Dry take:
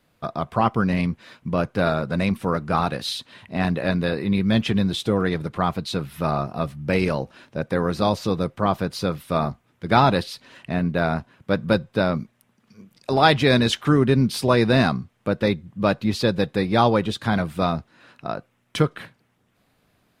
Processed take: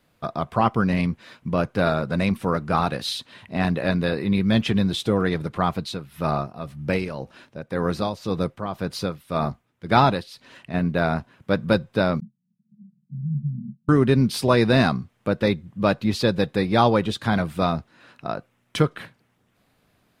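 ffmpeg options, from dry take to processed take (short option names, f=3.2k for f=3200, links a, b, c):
-filter_complex "[0:a]asplit=3[a][b][c];[a]afade=t=out:st=5.69:d=0.02[d];[b]tremolo=f=1.9:d=0.66,afade=t=in:st=5.69:d=0.02,afade=t=out:st=10.73:d=0.02[e];[c]afade=t=in:st=10.73:d=0.02[f];[d][e][f]amix=inputs=3:normalize=0,asettb=1/sr,asplit=3[g][h][i];[g]atrim=end=12.204[j];[h]atrim=start=12.2:end=13.89,asetpts=PTS-STARTPTS,afade=t=in:d=0.004:c=qsin,afade=t=out:st=1.686:d=0.004:c=qsin,asuperpass=centerf=170:order=12:qfactor=2[k];[i]atrim=start=13.886[l];[j][k]acrossfade=d=0.004:c1=hsin:c2=qsin[m];[m][l]acrossfade=d=0.004:c1=qsin:c2=hsin"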